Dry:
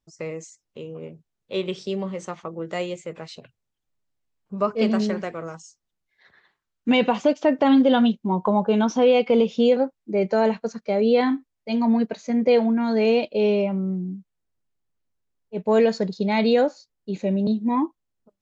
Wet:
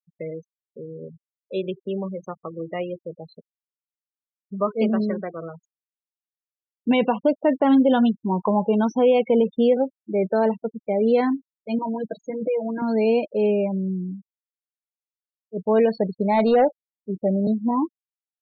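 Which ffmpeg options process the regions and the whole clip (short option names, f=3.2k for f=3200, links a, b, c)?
-filter_complex "[0:a]asettb=1/sr,asplit=3[a][b][c];[a]atrim=end=11.784[d];[b]atrim=start=11.78:end=12.82,asetpts=PTS-STARTPTS,afade=t=in:d=0.004:c=qsin,afade=t=out:st=1.036:d=0.004:c=qsin,aecho=1:1:6.2:0.98,atrim=end_sample=45864,acompressor=threshold=-24dB:ratio=3:attack=3.2:release=140:knee=1:detection=peak[e];[c]atrim=start=12.816[f];[d][e]acrossfade=d=0.004:c1=hsin:c2=qsin[g];[g][f]acrossfade=d=0.004:c1=qsin:c2=hsin,asettb=1/sr,asplit=3[h][i][j];[h]atrim=end=16.004[k];[i]atrim=start=16:end=17.71,asetpts=PTS-STARTPTS,afade=t=in:d=0.004:c=qsin,afade=t=out:st=1.706:d=0.004:c=qsin,equalizer=f=730:w=2.3:g=9,volume=12dB,asoftclip=hard,volume=-12dB[l];[j]atrim=start=17.706[m];[k][l]acrossfade=d=0.004:c1=hsin:c2=qsin[n];[n][m]acrossfade=d=0.004:c1=qsin:c2=hsin,afftfilt=real='re*gte(hypot(re,im),0.0447)':imag='im*gte(hypot(re,im),0.0447)':win_size=1024:overlap=0.75,highshelf=f=3.7k:g=-11.5"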